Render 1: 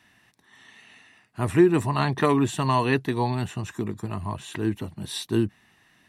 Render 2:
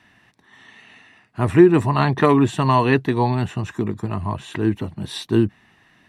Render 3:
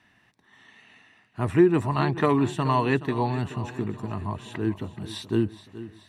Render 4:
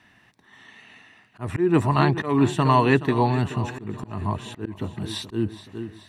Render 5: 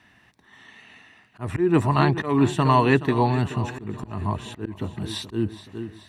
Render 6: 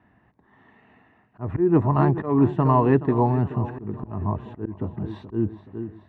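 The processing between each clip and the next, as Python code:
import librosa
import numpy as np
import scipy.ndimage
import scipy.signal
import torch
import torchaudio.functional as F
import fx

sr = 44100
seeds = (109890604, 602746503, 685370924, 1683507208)

y1 = fx.lowpass(x, sr, hz=3000.0, slope=6)
y1 = y1 * 10.0 ** (6.0 / 20.0)
y2 = fx.echo_feedback(y1, sr, ms=426, feedback_pct=52, wet_db=-15.0)
y2 = y2 * 10.0 ** (-6.5 / 20.0)
y3 = fx.auto_swell(y2, sr, attack_ms=199.0)
y3 = y3 * 10.0 ** (5.0 / 20.0)
y4 = fx.peak_eq(y3, sr, hz=66.0, db=9.5, octaves=0.23)
y5 = scipy.signal.sosfilt(scipy.signal.butter(2, 1000.0, 'lowpass', fs=sr, output='sos'), y4)
y5 = y5 * 10.0 ** (1.0 / 20.0)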